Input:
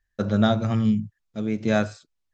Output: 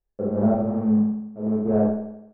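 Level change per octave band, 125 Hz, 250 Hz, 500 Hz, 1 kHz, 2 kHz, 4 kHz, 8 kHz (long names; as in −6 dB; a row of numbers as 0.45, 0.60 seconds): −4.5 dB, +2.5 dB, +2.5 dB, −2.5 dB, below −15 dB, below −35 dB, can't be measured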